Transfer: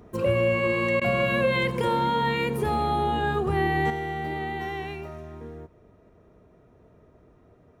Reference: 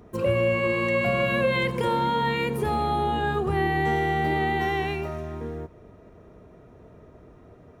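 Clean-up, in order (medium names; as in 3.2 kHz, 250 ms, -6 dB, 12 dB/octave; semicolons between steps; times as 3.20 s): interpolate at 1.00 s, 13 ms; trim 0 dB, from 3.90 s +6.5 dB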